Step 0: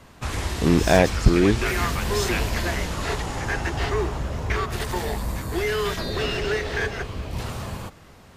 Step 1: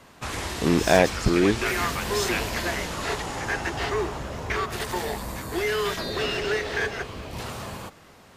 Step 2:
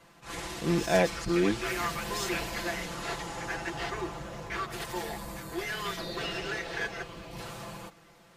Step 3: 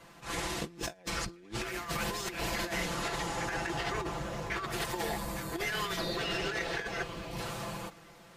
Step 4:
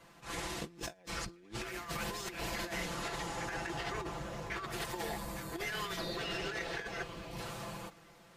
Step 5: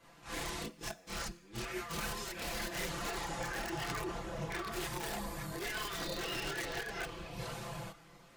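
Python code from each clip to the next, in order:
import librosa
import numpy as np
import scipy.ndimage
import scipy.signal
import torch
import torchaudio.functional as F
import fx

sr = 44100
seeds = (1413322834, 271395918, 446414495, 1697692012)

y1 = fx.low_shelf(x, sr, hz=130.0, db=-11.5)
y2 = y1 + 0.83 * np.pad(y1, (int(5.9 * sr / 1000.0), 0))[:len(y1)]
y2 = fx.attack_slew(y2, sr, db_per_s=170.0)
y2 = F.gain(torch.from_numpy(y2), -8.5).numpy()
y3 = fx.over_compress(y2, sr, threshold_db=-35.0, ratio=-0.5)
y4 = fx.attack_slew(y3, sr, db_per_s=350.0)
y4 = F.gain(torch.from_numpy(y4), -4.5).numpy()
y5 = (np.mod(10.0 ** (29.5 / 20.0) * y4 + 1.0, 2.0) - 1.0) / 10.0 ** (29.5 / 20.0)
y5 = fx.comb_fb(y5, sr, f0_hz=71.0, decay_s=0.99, harmonics='all', damping=0.0, mix_pct=40)
y5 = fx.chorus_voices(y5, sr, voices=6, hz=0.47, base_ms=29, depth_ms=4.4, mix_pct=60)
y5 = F.gain(torch.from_numpy(y5), 6.5).numpy()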